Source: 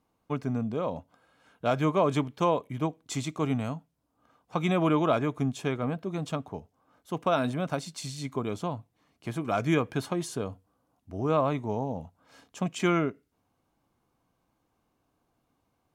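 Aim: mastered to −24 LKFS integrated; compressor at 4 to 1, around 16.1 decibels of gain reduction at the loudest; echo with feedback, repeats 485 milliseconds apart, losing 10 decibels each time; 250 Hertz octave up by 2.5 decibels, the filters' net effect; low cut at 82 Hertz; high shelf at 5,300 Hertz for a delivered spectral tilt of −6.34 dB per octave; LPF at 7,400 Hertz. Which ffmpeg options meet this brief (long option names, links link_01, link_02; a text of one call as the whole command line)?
ffmpeg -i in.wav -af "highpass=82,lowpass=7400,equalizer=frequency=250:width_type=o:gain=3.5,highshelf=frequency=5300:gain=-8.5,acompressor=threshold=-39dB:ratio=4,aecho=1:1:485|970|1455|1940:0.316|0.101|0.0324|0.0104,volume=18.5dB" out.wav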